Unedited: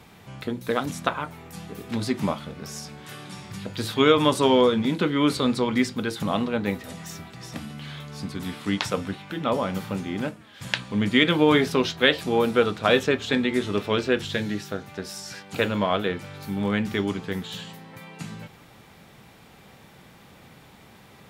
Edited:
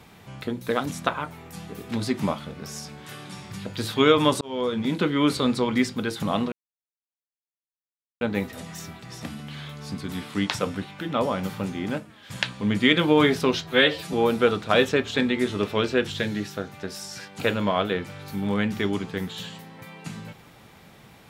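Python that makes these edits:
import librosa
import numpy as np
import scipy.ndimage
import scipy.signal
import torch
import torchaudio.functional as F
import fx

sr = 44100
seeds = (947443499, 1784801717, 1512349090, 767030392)

y = fx.edit(x, sr, fx.fade_in_span(start_s=4.41, length_s=0.55),
    fx.insert_silence(at_s=6.52, length_s=1.69),
    fx.stretch_span(start_s=11.95, length_s=0.33, factor=1.5), tone=tone)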